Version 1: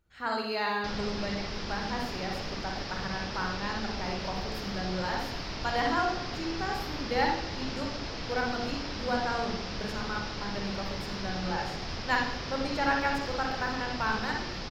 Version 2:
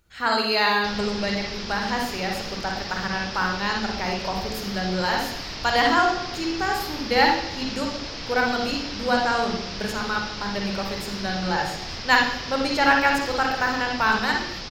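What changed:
speech +7.5 dB; master: add high shelf 2200 Hz +8 dB

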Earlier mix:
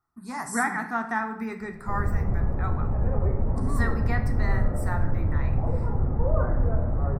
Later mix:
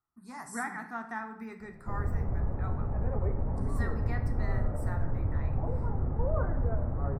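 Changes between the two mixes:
speech -10.0 dB; background: send -10.0 dB

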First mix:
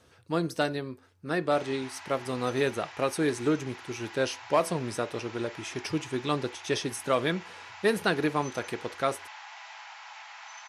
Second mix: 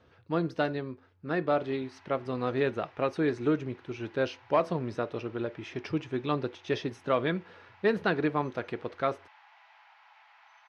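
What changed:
background -10.5 dB; master: add air absorption 250 m

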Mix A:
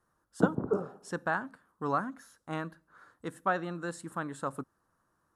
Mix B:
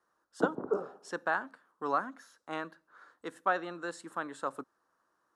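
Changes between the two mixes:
speech: add high shelf 4500 Hz +5.5 dB; master: add three-band isolator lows -19 dB, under 270 Hz, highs -14 dB, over 6300 Hz

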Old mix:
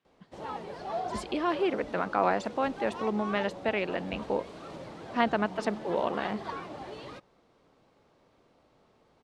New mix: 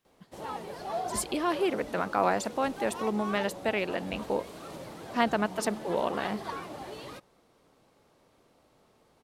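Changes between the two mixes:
speech: remove BPF 120–3800 Hz; background: remove air absorption 87 m

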